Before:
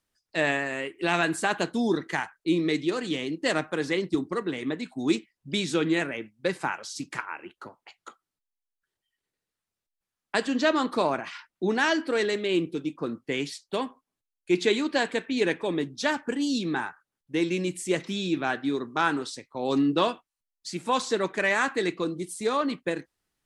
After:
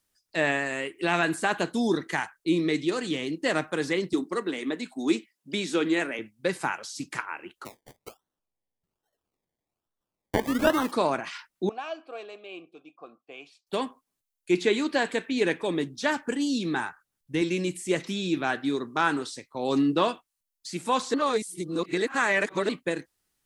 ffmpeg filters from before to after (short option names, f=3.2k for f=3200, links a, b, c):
-filter_complex "[0:a]asettb=1/sr,asplit=3[a][b][c];[a]atrim=end=4.134[d];[b]atrim=start=4.13:end=6.19,asetpts=PTS-STARTPTS,afade=t=in:d=0.004:c=qsin,afade=t=out:st=2.056:d=0.004:c=qsin,highpass=f=200:w=0.5412,highpass=f=200:w=1.3066[e];[c]atrim=start=6.186[f];[d][e]acrossfade=d=0.004:c1=hsin:c2=qsin[g];[g][f]acrossfade=d=0.004:c1=qsin:c2=hsin,asettb=1/sr,asplit=3[h][i][j];[h]atrim=end=7.654[k];[i]atrim=start=7.65:end=10.92,asetpts=PTS-STARTPTS,afade=t=in:d=0.004:c=qsin,afade=t=out:st=3.266:d=0.004:c=qsin,acrusher=samples=26:mix=1:aa=0.000001:lfo=1:lforange=15.6:lforate=1.2[l];[j]atrim=start=10.916[m];[k][l]acrossfade=d=0.004:c1=hsin:c2=qsin[n];[n][m]acrossfade=d=0.004:c1=qsin:c2=hsin,asettb=1/sr,asplit=3[o][p][q];[o]atrim=end=11.694[r];[p]atrim=start=11.69:end=13.67,asetpts=PTS-STARTPTS,afade=t=in:d=0.004:c=qsin,afade=t=out:st=1.976:d=0.004:c=qsin,asplit=3[s][t][u];[s]bandpass=f=730:t=q:w=8,volume=0dB[v];[t]bandpass=f=1.09k:t=q:w=8,volume=-6dB[w];[u]bandpass=f=2.44k:t=q:w=8,volume=-9dB[x];[v][w][x]amix=inputs=3:normalize=0[y];[q]atrim=start=13.666[z];[r][y]acrossfade=d=0.004:c1=hsin:c2=qsin[aa];[aa][z]acrossfade=d=0.004:c1=qsin:c2=hsin,asettb=1/sr,asplit=3[ab][ac][ad];[ab]atrim=end=16.744[ae];[ac]atrim=start=16.74:end=17.42,asetpts=PTS-STARTPTS,afade=t=in:d=0.004:c=qsin,afade=t=out:st=0.676:d=0.004:c=qsin,asubboost=boost=8.5:cutoff=210[af];[ad]atrim=start=17.416[ag];[ae][af]acrossfade=d=0.004:c1=hsin:c2=qsin[ah];[ah][ag]acrossfade=d=0.004:c1=qsin:c2=hsin,asplit=3[ai][aj][ak];[ai]atrim=end=21.142[al];[aj]atrim=start=21.138:end=22.692,asetpts=PTS-STARTPTS,areverse[am];[ak]atrim=start=22.688[an];[al][am]acrossfade=d=0.004:c1=hsin:c2=hsin[ao];[ao][an]acrossfade=d=0.004:c1=hsin:c2=hsin,highshelf=f=5.4k:g=9,acrossover=split=2800[ap][aq];[aq]acompressor=threshold=-36dB:ratio=4:attack=1:release=60[ar];[ap][ar]amix=inputs=2:normalize=0"